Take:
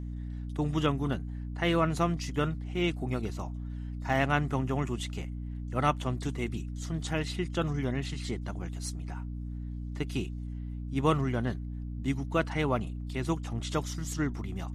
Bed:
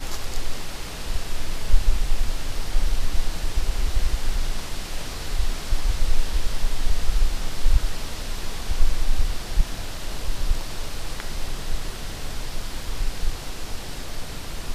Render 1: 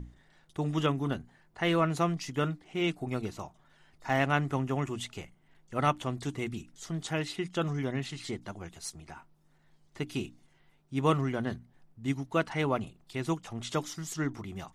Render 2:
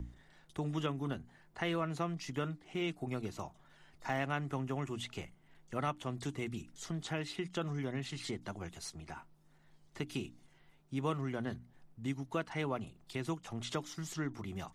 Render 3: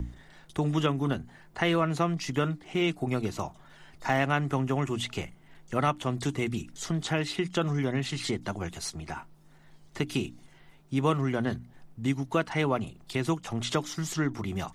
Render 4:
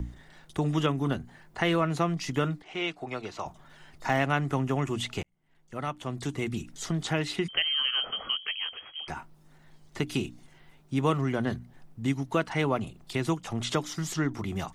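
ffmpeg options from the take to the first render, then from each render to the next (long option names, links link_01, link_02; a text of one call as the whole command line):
ffmpeg -i in.wav -af "bandreject=frequency=60:width_type=h:width=6,bandreject=frequency=120:width_type=h:width=6,bandreject=frequency=180:width_type=h:width=6,bandreject=frequency=240:width_type=h:width=6,bandreject=frequency=300:width_type=h:width=6" out.wav
ffmpeg -i in.wav -filter_complex "[0:a]acrossover=split=110|930|4800[link_01][link_02][link_03][link_04];[link_04]alimiter=level_in=15dB:limit=-24dB:level=0:latency=1:release=255,volume=-15dB[link_05];[link_01][link_02][link_03][link_05]amix=inputs=4:normalize=0,acompressor=threshold=-38dB:ratio=2" out.wav
ffmpeg -i in.wav -af "volume=9.5dB" out.wav
ffmpeg -i in.wav -filter_complex "[0:a]asettb=1/sr,asplit=3[link_01][link_02][link_03];[link_01]atrim=end=2.624[link_04];[link_02]atrim=start=2.62:end=3.46,asetpts=PTS-STARTPTS,afade=type=in:duration=0.004:curve=qsin,afade=type=out:start_time=0.836:duration=0.004:curve=qsin,acrossover=split=440 6200:gain=0.224 1 0.126[link_05][link_06][link_07];[link_05][link_06][link_07]amix=inputs=3:normalize=0[link_08];[link_03]atrim=start=3.456[link_09];[link_04][link_08]acrossfade=duration=0.004:curve1=hsin:curve2=qsin[link_10];[link_10][link_09]acrossfade=duration=0.004:curve1=qsin:curve2=hsin,asettb=1/sr,asplit=3[link_11][link_12][link_13];[link_11]atrim=end=7.484[link_14];[link_12]atrim=start=7.48:end=9.08,asetpts=PTS-STARTPTS,afade=type=in:duration=0.004:curve=qsin,afade=type=out:start_time=1.596:duration=0.004:curve=qsin,lowpass=frequency=2800:width_type=q:width=0.5098,lowpass=frequency=2800:width_type=q:width=0.6013,lowpass=frequency=2800:width_type=q:width=0.9,lowpass=frequency=2800:width_type=q:width=2.563,afreqshift=-3300[link_15];[link_13]atrim=start=9.076[link_16];[link_14][link_15]acrossfade=duration=0.004:curve1=hsin:curve2=qsin[link_17];[link_17][link_16]acrossfade=duration=0.004:curve1=qsin:curve2=hsin,asplit=2[link_18][link_19];[link_18]atrim=end=5.23,asetpts=PTS-STARTPTS,afade=type=out:start_time=5.226:duration=0.004:curve=hsin[link_20];[link_19]atrim=start=5.23,asetpts=PTS-STARTPTS,afade=type=in:duration=1.45[link_21];[link_20][link_21]concat=n=2:v=0:a=1" out.wav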